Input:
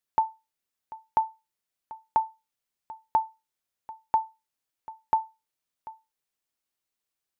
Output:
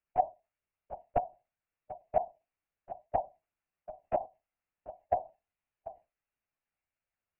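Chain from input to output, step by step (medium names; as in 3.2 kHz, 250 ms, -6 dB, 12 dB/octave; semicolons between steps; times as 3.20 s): in parallel at -0.5 dB: compression, threshold -36 dBFS, peak gain reduction 16 dB; on the sum: whisper effect; LPC vocoder at 8 kHz whisper; formant shift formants -5 st; trim -7 dB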